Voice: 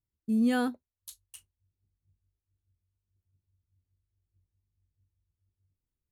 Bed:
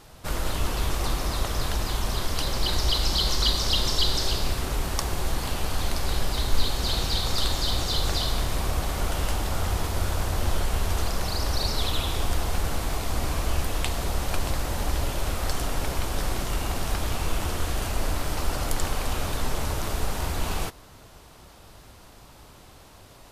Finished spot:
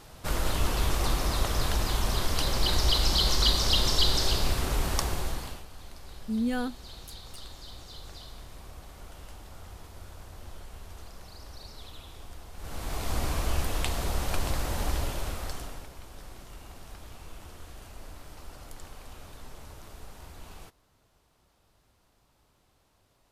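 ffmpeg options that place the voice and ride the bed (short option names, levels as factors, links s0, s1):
-filter_complex "[0:a]adelay=6000,volume=0.708[s0];[1:a]volume=6.68,afade=t=out:st=4.97:d=0.68:silence=0.112202,afade=t=in:st=12.56:d=0.56:silence=0.141254,afade=t=out:st=14.87:d=1.02:silence=0.158489[s1];[s0][s1]amix=inputs=2:normalize=0"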